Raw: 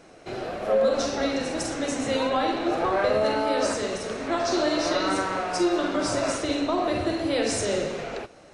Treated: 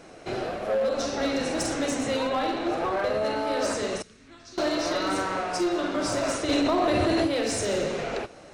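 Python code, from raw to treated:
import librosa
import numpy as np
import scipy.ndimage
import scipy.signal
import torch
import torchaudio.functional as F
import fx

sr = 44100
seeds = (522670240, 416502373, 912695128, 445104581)

y = fx.tone_stack(x, sr, knobs='6-0-2', at=(4.02, 4.58))
y = fx.rider(y, sr, range_db=4, speed_s=0.5)
y = np.clip(10.0 ** (19.5 / 20.0) * y, -1.0, 1.0) / 10.0 ** (19.5 / 20.0)
y = fx.env_flatten(y, sr, amount_pct=100, at=(6.48, 7.26), fade=0.02)
y = y * 10.0 ** (-1.0 / 20.0)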